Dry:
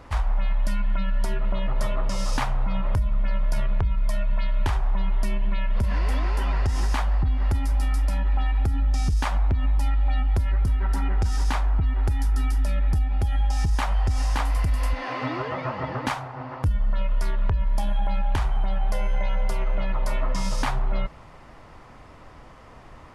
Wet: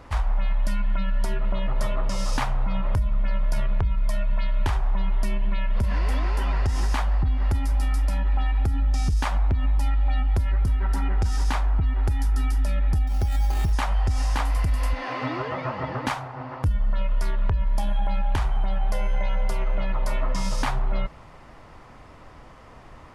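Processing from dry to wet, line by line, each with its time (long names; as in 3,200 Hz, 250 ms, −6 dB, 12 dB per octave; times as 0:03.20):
0:13.07–0:13.73: bad sample-rate conversion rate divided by 8×, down none, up hold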